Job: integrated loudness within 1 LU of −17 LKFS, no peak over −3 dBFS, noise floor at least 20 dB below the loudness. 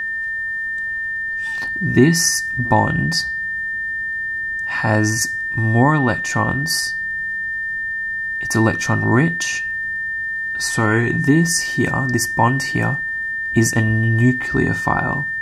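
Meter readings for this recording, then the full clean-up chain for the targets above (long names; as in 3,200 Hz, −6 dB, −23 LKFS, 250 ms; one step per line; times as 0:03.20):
crackle rate 43 per second; interfering tone 1,800 Hz; level of the tone −21 dBFS; integrated loudness −18.5 LKFS; sample peak −2.0 dBFS; target loudness −17.0 LKFS
→ click removal
notch filter 1,800 Hz, Q 30
level +1.5 dB
brickwall limiter −3 dBFS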